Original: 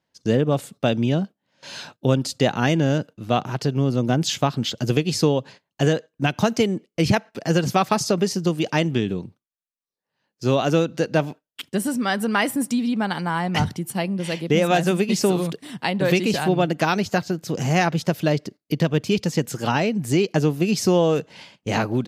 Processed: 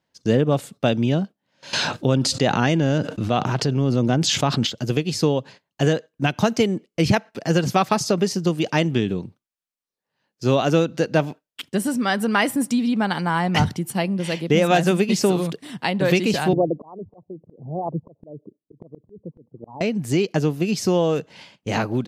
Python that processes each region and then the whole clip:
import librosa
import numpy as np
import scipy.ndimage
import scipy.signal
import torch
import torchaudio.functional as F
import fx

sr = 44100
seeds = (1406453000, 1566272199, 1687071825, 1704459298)

y = fx.chain(x, sr, fx.lowpass(hz=9300.0, slope=12),
    fx.env_flatten(amount_pct=70), at=(1.73, 4.67))
y = fx.chain(y, sr, fx.envelope_sharpen(power=2.0),
    fx.steep_lowpass(hz=1100.0, slope=96),
    fx.auto_swell(attack_ms=684.0), at=(16.53, 19.81))
y = fx.high_shelf(y, sr, hz=11000.0, db=-4.0)
y = fx.rider(y, sr, range_db=10, speed_s=2.0)